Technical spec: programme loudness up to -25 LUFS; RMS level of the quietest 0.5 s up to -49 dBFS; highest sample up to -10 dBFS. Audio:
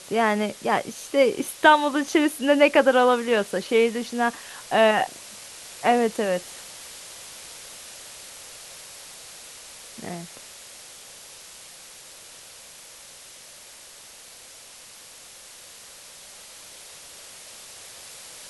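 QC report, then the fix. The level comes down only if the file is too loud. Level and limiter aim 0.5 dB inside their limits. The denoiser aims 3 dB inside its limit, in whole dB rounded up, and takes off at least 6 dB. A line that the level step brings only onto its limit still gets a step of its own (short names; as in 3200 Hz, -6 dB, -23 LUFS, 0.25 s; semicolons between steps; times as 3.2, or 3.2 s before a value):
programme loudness -21.5 LUFS: fail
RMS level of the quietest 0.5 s -46 dBFS: fail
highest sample -4.0 dBFS: fail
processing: gain -4 dB; limiter -10.5 dBFS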